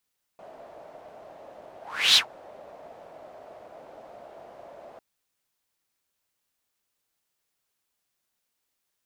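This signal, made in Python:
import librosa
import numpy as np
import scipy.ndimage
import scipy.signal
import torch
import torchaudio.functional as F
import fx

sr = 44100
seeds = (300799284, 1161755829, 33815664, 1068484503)

y = fx.whoosh(sr, seeds[0], length_s=4.6, peak_s=1.77, rise_s=0.37, fall_s=0.11, ends_hz=640.0, peak_hz=4000.0, q=4.7, swell_db=29.5)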